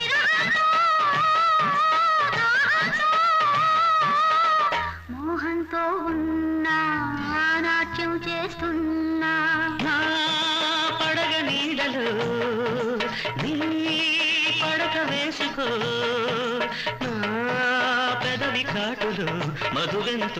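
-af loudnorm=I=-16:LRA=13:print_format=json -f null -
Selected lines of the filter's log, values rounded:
"input_i" : "-22.8",
"input_tp" : "-13.8",
"input_lra" : "4.7",
"input_thresh" : "-32.8",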